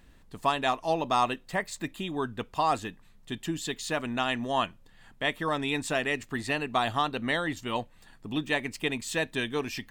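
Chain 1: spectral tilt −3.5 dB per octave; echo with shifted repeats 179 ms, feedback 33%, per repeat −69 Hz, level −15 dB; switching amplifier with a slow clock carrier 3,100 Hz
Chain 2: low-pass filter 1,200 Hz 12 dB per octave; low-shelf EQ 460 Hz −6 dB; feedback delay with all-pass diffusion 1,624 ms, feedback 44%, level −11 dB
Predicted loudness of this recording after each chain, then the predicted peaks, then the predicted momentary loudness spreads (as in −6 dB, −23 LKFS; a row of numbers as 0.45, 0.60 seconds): −27.0, −34.5 LKFS; −11.0, −15.5 dBFS; 5, 9 LU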